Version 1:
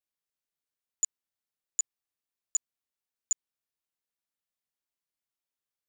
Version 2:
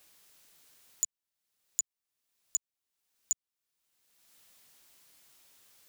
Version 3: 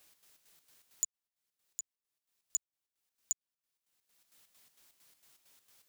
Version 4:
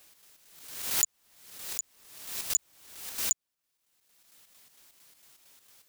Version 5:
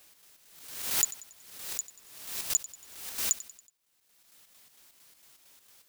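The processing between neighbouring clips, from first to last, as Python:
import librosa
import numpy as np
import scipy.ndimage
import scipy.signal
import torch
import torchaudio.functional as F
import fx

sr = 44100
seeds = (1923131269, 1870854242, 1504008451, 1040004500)

y1 = fx.band_squash(x, sr, depth_pct=100)
y2 = fx.chopper(y1, sr, hz=4.4, depth_pct=60, duty_pct=60)
y2 = y2 * librosa.db_to_amplitude(-2.5)
y3 = fx.pre_swell(y2, sr, db_per_s=64.0)
y3 = y3 * librosa.db_to_amplitude(6.5)
y4 = fx.echo_feedback(y3, sr, ms=93, feedback_pct=49, wet_db=-16.5)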